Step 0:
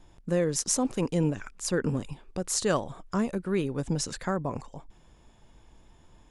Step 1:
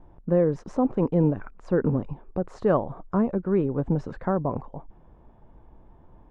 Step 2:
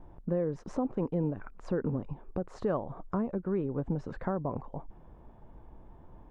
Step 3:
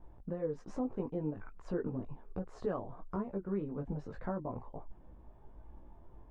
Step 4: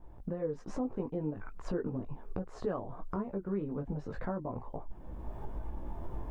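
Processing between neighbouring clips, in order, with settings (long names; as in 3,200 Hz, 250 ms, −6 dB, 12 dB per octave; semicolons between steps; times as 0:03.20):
Chebyshev low-pass filter 910 Hz, order 2; level +5.5 dB
downward compressor 2 to 1, threshold −34 dBFS, peak gain reduction 10 dB
multi-voice chorus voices 6, 0.36 Hz, delay 18 ms, depth 2.5 ms; level −2.5 dB
camcorder AGC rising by 23 dB per second; level +1 dB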